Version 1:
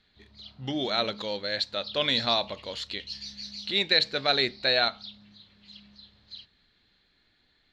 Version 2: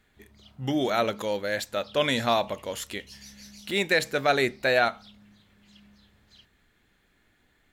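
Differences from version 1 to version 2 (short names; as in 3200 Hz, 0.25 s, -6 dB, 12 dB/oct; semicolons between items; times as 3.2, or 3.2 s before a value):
speech +5.0 dB; master: remove synth low-pass 4200 Hz, resonance Q 6.6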